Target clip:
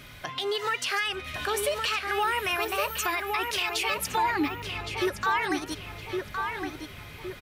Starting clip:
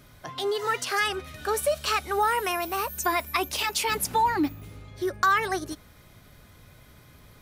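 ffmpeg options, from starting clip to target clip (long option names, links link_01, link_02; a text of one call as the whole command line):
ffmpeg -i in.wav -filter_complex "[0:a]equalizer=frequency=2600:width=1:gain=11,alimiter=limit=-22.5dB:level=0:latency=1:release=389,asplit=2[link_01][link_02];[link_02]adelay=1114,lowpass=frequency=2800:poles=1,volume=-4dB,asplit=2[link_03][link_04];[link_04]adelay=1114,lowpass=frequency=2800:poles=1,volume=0.48,asplit=2[link_05][link_06];[link_06]adelay=1114,lowpass=frequency=2800:poles=1,volume=0.48,asplit=2[link_07][link_08];[link_08]adelay=1114,lowpass=frequency=2800:poles=1,volume=0.48,asplit=2[link_09][link_10];[link_10]adelay=1114,lowpass=frequency=2800:poles=1,volume=0.48,asplit=2[link_11][link_12];[link_12]adelay=1114,lowpass=frequency=2800:poles=1,volume=0.48[link_13];[link_01][link_03][link_05][link_07][link_09][link_11][link_13]amix=inputs=7:normalize=0,volume=3.5dB" out.wav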